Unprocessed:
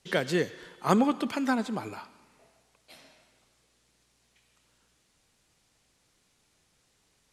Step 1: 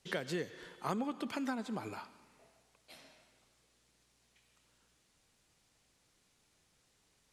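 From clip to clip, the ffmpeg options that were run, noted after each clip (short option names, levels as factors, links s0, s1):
-af "acompressor=threshold=0.0251:ratio=3,volume=0.668"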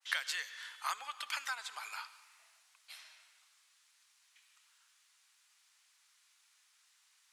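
-af "highpass=f=1100:w=0.5412,highpass=f=1100:w=1.3066,adynamicequalizer=threshold=0.00158:dfrequency=1800:dqfactor=0.7:tfrequency=1800:tqfactor=0.7:attack=5:release=100:ratio=0.375:range=2:mode=boostabove:tftype=highshelf,volume=1.68"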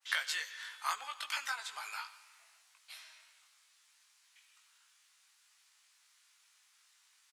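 -filter_complex "[0:a]asplit=2[s0][s1];[s1]adelay=19,volume=0.631[s2];[s0][s2]amix=inputs=2:normalize=0"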